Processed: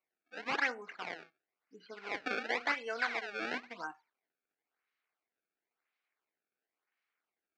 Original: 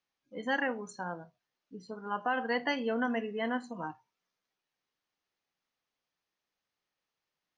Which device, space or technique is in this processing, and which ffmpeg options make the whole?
circuit-bent sampling toy: -filter_complex "[0:a]acrusher=samples=25:mix=1:aa=0.000001:lfo=1:lforange=40:lforate=0.96,highpass=490,equalizer=frequency=560:width_type=q:width=4:gain=-8,equalizer=frequency=930:width_type=q:width=4:gain=-5,equalizer=frequency=1500:width_type=q:width=4:gain=4,equalizer=frequency=2200:width_type=q:width=4:gain=8,equalizer=frequency=3400:width_type=q:width=4:gain=-4,lowpass=frequency=4600:width=0.5412,lowpass=frequency=4600:width=1.3066,asettb=1/sr,asplit=3[link_01][link_02][link_03];[link_01]atrim=end=2.744[link_04];[link_02]atrim=start=2.74:end=3.33,asetpts=PTS-STARTPTS,afade=type=in:duration=0.004:curve=qsin,afade=type=out:start_time=0.586:duration=0.004:curve=qsin,equalizer=frequency=250:width=1.5:gain=-9[link_05];[link_03]atrim=start=3.326[link_06];[link_04][link_05]acrossfade=duration=0.004:curve1=hsin:curve2=qsin[link_07];[link_07][link_06]acrossfade=duration=0.004:curve1=qsin:curve2=hsin"

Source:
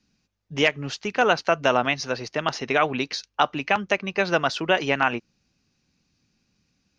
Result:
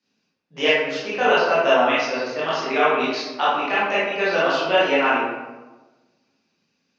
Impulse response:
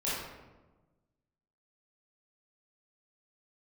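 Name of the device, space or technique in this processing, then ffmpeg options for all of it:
supermarket ceiling speaker: -filter_complex "[0:a]highpass=290,lowpass=5900[link_01];[1:a]atrim=start_sample=2205[link_02];[link_01][link_02]afir=irnorm=-1:irlink=0,volume=-3.5dB"

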